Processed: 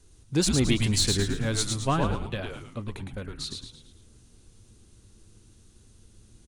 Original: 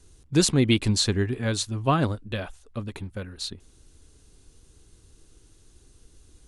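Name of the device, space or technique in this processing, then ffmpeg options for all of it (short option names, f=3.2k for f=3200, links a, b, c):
parallel distortion: -filter_complex "[0:a]asplit=2[a][b];[b]asoftclip=type=hard:threshold=-22.5dB,volume=-8dB[c];[a][c]amix=inputs=2:normalize=0,asettb=1/sr,asplit=3[d][e][f];[d]atrim=end=0.804[g];[e]atrim=start=0.8:end=1.8,asetpts=PTS-STARTPTS,afade=t=in:d=0.004:c=qsin,afade=t=out:st=0.996:d=0.004:c=qsin,highshelf=f=7.4k:g=8.5[h];[f]atrim=start=1.796[i];[g][h]acrossfade=d=0.004:c1=hsin:c2=qsin[j];[j][i]acrossfade=d=0.004:c1=qsin:c2=hsin,asplit=6[k][l][m][n][o][p];[l]adelay=110,afreqshift=-120,volume=-4dB[q];[m]adelay=220,afreqshift=-240,volume=-11.3dB[r];[n]adelay=330,afreqshift=-360,volume=-18.7dB[s];[o]adelay=440,afreqshift=-480,volume=-26dB[t];[p]adelay=550,afreqshift=-600,volume=-33.3dB[u];[k][q][r][s][t][u]amix=inputs=6:normalize=0,volume=-5.5dB"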